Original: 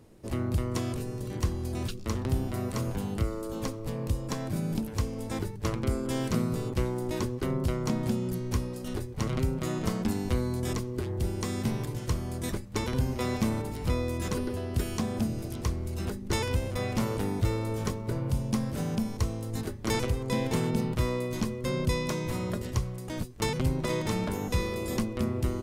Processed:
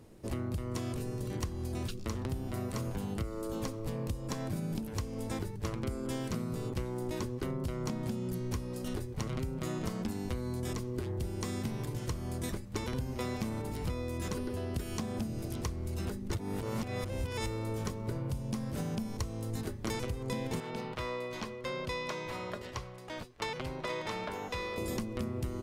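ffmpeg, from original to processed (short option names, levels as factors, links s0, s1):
-filter_complex "[0:a]asettb=1/sr,asplit=3[s0][s1][s2];[s0]atrim=end=20.604[s3];[s1]atrim=start=20.6:end=24.78,asetpts=PTS-STARTPTS,afade=t=in:d=0.004:c=qsin,afade=t=out:st=4.176:d=0.004:c=qsin,acrossover=split=470 4900:gain=0.2 1 0.2[s4][s5][s6];[s4][s5][s6]amix=inputs=3:normalize=0[s7];[s2]atrim=start=24.776[s8];[s3][s7]acrossfade=d=0.004:c1=hsin:c2=qsin[s9];[s9][s8]acrossfade=d=0.004:c1=qsin:c2=hsin,asplit=3[s10][s11][s12];[s10]atrim=end=16.342[s13];[s11]atrim=start=16.338:end=17.462,asetpts=PTS-STARTPTS,areverse[s14];[s12]atrim=start=17.458[s15];[s13][s14]acrossfade=d=0.004:c1=hsin:c2=hsin[s16];[s16][s15]acrossfade=d=0.004:c1=hsin:c2=hsin,acompressor=threshold=0.0251:ratio=6"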